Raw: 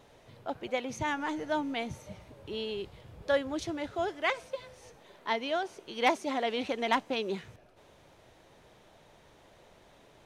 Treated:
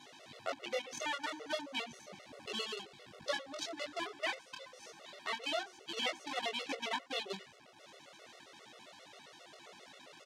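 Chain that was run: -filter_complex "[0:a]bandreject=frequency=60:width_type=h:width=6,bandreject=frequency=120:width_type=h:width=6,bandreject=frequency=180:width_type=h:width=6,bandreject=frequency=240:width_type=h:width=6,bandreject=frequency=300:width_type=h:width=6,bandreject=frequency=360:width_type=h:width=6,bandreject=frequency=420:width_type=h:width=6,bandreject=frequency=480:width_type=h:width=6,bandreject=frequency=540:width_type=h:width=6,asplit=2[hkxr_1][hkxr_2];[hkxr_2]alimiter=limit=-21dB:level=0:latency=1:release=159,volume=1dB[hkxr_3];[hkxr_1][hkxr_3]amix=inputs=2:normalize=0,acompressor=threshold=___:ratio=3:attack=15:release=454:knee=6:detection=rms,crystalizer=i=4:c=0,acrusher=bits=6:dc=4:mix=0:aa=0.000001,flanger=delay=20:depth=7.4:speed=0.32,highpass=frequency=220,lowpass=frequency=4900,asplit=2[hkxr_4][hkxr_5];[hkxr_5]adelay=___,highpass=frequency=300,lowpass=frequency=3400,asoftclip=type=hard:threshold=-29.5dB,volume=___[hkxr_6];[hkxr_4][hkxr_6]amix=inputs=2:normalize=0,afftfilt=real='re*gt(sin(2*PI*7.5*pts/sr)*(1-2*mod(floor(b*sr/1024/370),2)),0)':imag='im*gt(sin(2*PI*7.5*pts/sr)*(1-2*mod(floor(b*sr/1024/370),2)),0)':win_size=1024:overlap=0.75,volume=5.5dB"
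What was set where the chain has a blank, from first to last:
-39dB, 90, -23dB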